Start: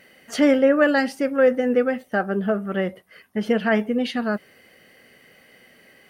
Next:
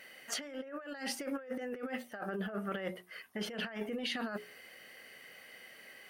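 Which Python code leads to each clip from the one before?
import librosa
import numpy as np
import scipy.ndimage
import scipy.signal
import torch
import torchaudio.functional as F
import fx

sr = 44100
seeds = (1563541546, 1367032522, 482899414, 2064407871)

y = fx.low_shelf(x, sr, hz=450.0, db=-12.0)
y = fx.hum_notches(y, sr, base_hz=60, count=7)
y = fx.over_compress(y, sr, threshold_db=-34.0, ratio=-1.0)
y = F.gain(torch.from_numpy(y), -6.5).numpy()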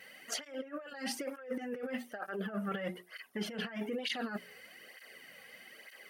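y = fx.flanger_cancel(x, sr, hz=1.1, depth_ms=3.4)
y = F.gain(torch.from_numpy(y), 3.0).numpy()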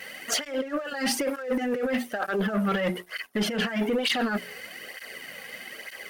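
y = fx.leveller(x, sr, passes=2)
y = F.gain(torch.from_numpy(y), 6.0).numpy()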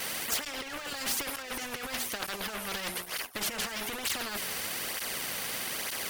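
y = fx.spectral_comp(x, sr, ratio=4.0)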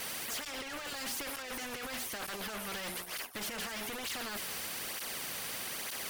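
y = 10.0 ** (-35.5 / 20.0) * np.tanh(x / 10.0 ** (-35.5 / 20.0))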